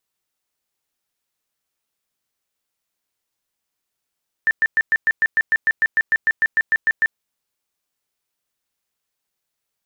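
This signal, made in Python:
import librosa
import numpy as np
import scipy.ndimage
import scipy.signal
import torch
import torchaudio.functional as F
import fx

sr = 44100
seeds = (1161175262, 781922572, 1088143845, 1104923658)

y = fx.tone_burst(sr, hz=1780.0, cycles=70, every_s=0.15, bursts=18, level_db=-12.5)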